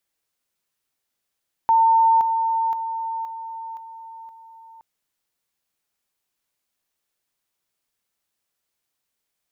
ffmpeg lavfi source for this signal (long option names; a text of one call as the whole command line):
ffmpeg -f lavfi -i "aevalsrc='pow(10,(-12.5-6*floor(t/0.52))/20)*sin(2*PI*904*t)':duration=3.12:sample_rate=44100" out.wav